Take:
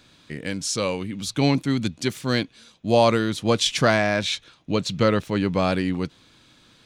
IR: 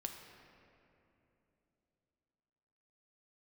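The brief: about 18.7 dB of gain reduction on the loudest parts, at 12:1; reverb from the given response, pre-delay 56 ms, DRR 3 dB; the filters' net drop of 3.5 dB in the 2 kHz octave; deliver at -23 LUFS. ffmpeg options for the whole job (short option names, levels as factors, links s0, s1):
-filter_complex "[0:a]equalizer=f=2000:t=o:g=-4.5,acompressor=threshold=0.0224:ratio=12,asplit=2[s0][s1];[1:a]atrim=start_sample=2205,adelay=56[s2];[s1][s2]afir=irnorm=-1:irlink=0,volume=0.891[s3];[s0][s3]amix=inputs=2:normalize=0,volume=4.47"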